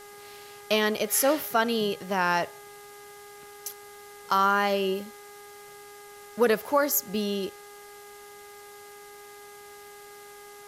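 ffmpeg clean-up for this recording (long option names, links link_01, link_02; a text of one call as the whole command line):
ffmpeg -i in.wav -af "adeclick=threshold=4,bandreject=frequency=409.3:width_type=h:width=4,bandreject=frequency=818.6:width_type=h:width=4,bandreject=frequency=1227.9:width_type=h:width=4,bandreject=frequency=1637.2:width_type=h:width=4,bandreject=frequency=2046.5:width_type=h:width=4,afftdn=noise_reduction=25:noise_floor=-47" out.wav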